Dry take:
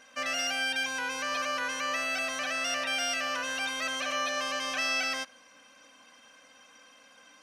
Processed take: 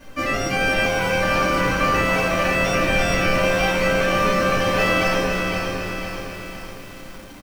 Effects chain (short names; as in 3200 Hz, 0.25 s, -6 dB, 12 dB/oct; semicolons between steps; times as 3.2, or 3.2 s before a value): tilt shelf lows +6.5 dB, about 930 Hz; on a send: frequency-shifting echo 0.337 s, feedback 51%, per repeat -80 Hz, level -8.5 dB; on the sum: added noise pink -62 dBFS; in parallel at -6.5 dB: decimation with a swept rate 37×, swing 100% 0.76 Hz; on the sum: reverb RT60 0.35 s, pre-delay 3 ms, DRR -9 dB; lo-fi delay 0.507 s, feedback 55%, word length 7-bit, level -5.5 dB